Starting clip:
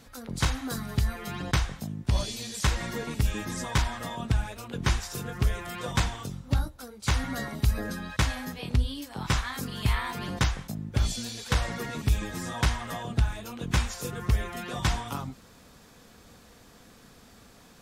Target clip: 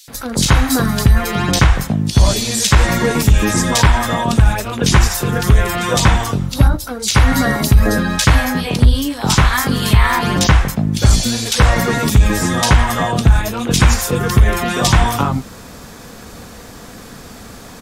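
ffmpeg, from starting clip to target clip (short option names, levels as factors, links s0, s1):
-filter_complex "[0:a]acrossover=split=3200[s0][s1];[s0]adelay=80[s2];[s2][s1]amix=inputs=2:normalize=0,asoftclip=type=hard:threshold=0.15,alimiter=level_in=9.44:limit=0.891:release=50:level=0:latency=1,volume=0.891"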